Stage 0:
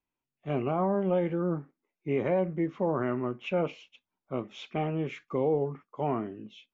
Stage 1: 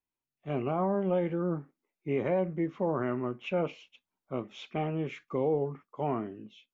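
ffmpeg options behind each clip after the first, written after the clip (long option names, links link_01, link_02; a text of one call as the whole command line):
ffmpeg -i in.wav -af "dynaudnorm=framelen=120:gausssize=7:maxgain=4.5dB,volume=-6dB" out.wav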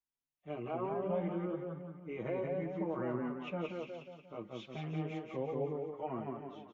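ffmpeg -i in.wav -filter_complex "[0:a]asplit=2[link_01][link_02];[link_02]aecho=0:1:179|358|537|716|895|1074|1253:0.668|0.334|0.167|0.0835|0.0418|0.0209|0.0104[link_03];[link_01][link_03]amix=inputs=2:normalize=0,asplit=2[link_04][link_05];[link_05]adelay=5.8,afreqshift=1.3[link_06];[link_04][link_06]amix=inputs=2:normalize=1,volume=-5.5dB" out.wav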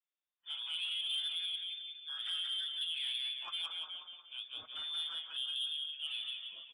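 ffmpeg -i in.wav -af "lowpass=frequency=3100:width_type=q:width=0.5098,lowpass=frequency=3100:width_type=q:width=0.6013,lowpass=frequency=3100:width_type=q:width=0.9,lowpass=frequency=3100:width_type=q:width=2.563,afreqshift=-3700,asoftclip=type=tanh:threshold=-30.5dB" out.wav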